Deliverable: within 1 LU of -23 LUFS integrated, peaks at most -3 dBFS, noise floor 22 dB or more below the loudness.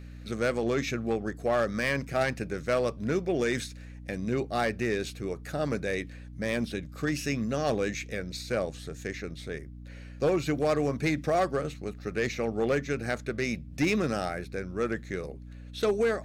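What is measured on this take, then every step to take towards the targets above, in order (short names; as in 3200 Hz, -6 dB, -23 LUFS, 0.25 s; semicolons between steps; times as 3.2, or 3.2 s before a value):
clipped 0.8%; flat tops at -19.5 dBFS; hum 60 Hz; harmonics up to 300 Hz; hum level -41 dBFS; loudness -30.5 LUFS; peak -19.5 dBFS; loudness target -23.0 LUFS
-> clip repair -19.5 dBFS; de-hum 60 Hz, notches 5; gain +7.5 dB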